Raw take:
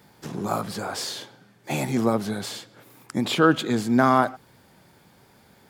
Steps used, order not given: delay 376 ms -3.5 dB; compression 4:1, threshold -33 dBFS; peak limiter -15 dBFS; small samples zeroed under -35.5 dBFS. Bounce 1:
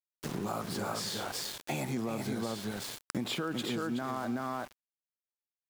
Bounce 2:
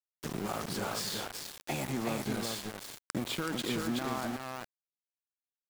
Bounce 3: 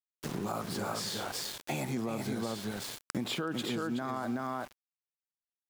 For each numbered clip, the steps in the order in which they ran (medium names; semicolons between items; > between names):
delay > peak limiter > small samples zeroed > compression; peak limiter > compression > delay > small samples zeroed; delay > small samples zeroed > peak limiter > compression